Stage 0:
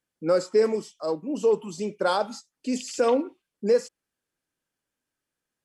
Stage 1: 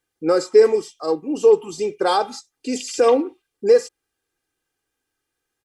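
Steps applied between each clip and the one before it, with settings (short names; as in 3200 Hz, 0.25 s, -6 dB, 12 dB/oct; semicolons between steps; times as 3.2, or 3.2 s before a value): comb 2.5 ms, depth 65%; gain +4.5 dB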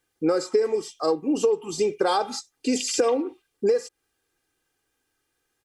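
compressor 10:1, threshold -22 dBFS, peak gain reduction 15 dB; gain +3.5 dB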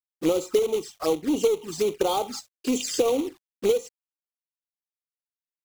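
companded quantiser 4-bit; envelope flanger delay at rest 4.8 ms, full sweep at -21 dBFS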